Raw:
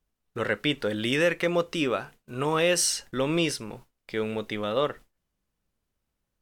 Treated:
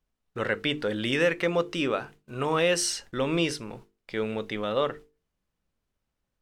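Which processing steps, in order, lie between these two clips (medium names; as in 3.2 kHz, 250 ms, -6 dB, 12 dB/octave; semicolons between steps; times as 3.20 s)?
treble shelf 9.7 kHz -11.5 dB; hum notches 50/100/150/200/250/300/350/400/450 Hz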